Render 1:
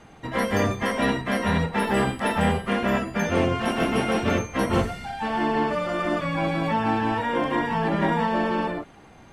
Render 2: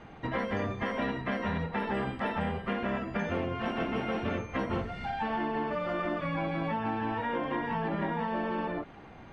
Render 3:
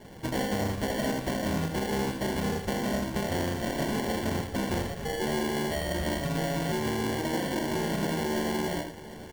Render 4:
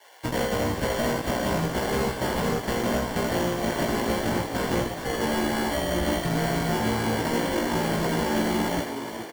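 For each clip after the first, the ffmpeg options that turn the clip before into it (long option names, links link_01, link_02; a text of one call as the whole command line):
ffmpeg -i in.wav -af "lowpass=3200,acompressor=threshold=-29dB:ratio=6" out.wav
ffmpeg -i in.wav -filter_complex "[0:a]acrusher=samples=35:mix=1:aa=0.000001,asplit=2[link_01][link_02];[link_02]aecho=0:1:80|749:0.422|0.158[link_03];[link_01][link_03]amix=inputs=2:normalize=0,asoftclip=type=hard:threshold=-25dB,volume=2dB" out.wav
ffmpeg -i in.wav -filter_complex "[0:a]acrossover=split=640|1100[link_01][link_02][link_03];[link_01]acrusher=bits=4:mix=0:aa=0.5[link_04];[link_04][link_02][link_03]amix=inputs=3:normalize=0,asplit=2[link_05][link_06];[link_06]adelay=17,volume=-3dB[link_07];[link_05][link_07]amix=inputs=2:normalize=0,asplit=6[link_08][link_09][link_10][link_11][link_12][link_13];[link_09]adelay=417,afreqshift=53,volume=-9dB[link_14];[link_10]adelay=834,afreqshift=106,volume=-15.6dB[link_15];[link_11]adelay=1251,afreqshift=159,volume=-22.1dB[link_16];[link_12]adelay=1668,afreqshift=212,volume=-28.7dB[link_17];[link_13]adelay=2085,afreqshift=265,volume=-35.2dB[link_18];[link_08][link_14][link_15][link_16][link_17][link_18]amix=inputs=6:normalize=0,volume=1.5dB" out.wav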